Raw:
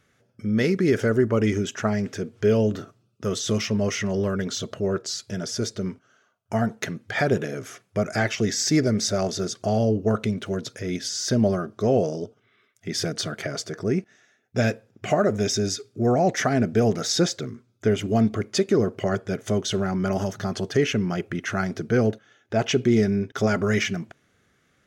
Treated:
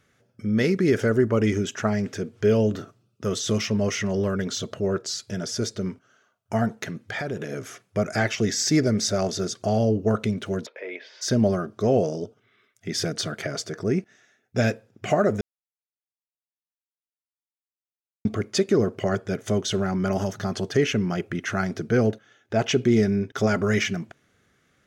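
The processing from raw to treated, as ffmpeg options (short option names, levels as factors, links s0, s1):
-filter_complex "[0:a]asettb=1/sr,asplit=3[s0][s1][s2];[s0]atrim=end=6.794[s3];[s1]atrim=start=6.79:end=7.51,asetpts=PTS-STARTPTS,afade=t=in:d=0.004:c=qsin,afade=t=out:st=0.716:d=0.004:c=qsin,acompressor=threshold=0.0447:ratio=4:attack=3.2:release=140:knee=1:detection=peak[s4];[s2]atrim=start=7.506[s5];[s3][s4]acrossfade=d=0.004:c1=hsin:c2=qsin[s6];[s6][s5]acrossfade=d=0.004:c1=qsin:c2=hsin,asplit=3[s7][s8][s9];[s7]afade=t=out:st=10.65:d=0.02[s10];[s8]highpass=f=440:w=0.5412,highpass=f=440:w=1.3066,equalizer=f=540:t=q:w=4:g=5,equalizer=f=940:t=q:w=4:g=6,equalizer=f=1400:t=q:w=4:g=-6,equalizer=f=2300:t=q:w=4:g=5,lowpass=f=2700:w=0.5412,lowpass=f=2700:w=1.3066,afade=t=in:st=10.65:d=0.02,afade=t=out:st=11.21:d=0.02[s11];[s9]afade=t=in:st=11.21:d=0.02[s12];[s10][s11][s12]amix=inputs=3:normalize=0,asplit=3[s13][s14][s15];[s13]atrim=end=15.41,asetpts=PTS-STARTPTS,afade=t=out:st=15.406:d=0.004:c=hsin[s16];[s14]atrim=start=15.41:end=18.25,asetpts=PTS-STARTPTS,volume=0[s17];[s15]atrim=start=18.25,asetpts=PTS-STARTPTS,afade=t=in:d=0.004:c=hsin[s18];[s16][s17][s18]concat=n=3:v=0:a=1"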